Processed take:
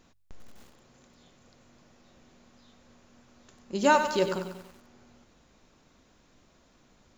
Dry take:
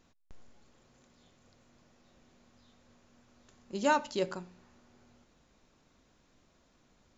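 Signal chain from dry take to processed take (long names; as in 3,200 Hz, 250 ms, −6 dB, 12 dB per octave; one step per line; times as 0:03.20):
hum removal 48.94 Hz, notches 3
feedback echo at a low word length 95 ms, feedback 55%, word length 9 bits, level −8.5 dB
level +5.5 dB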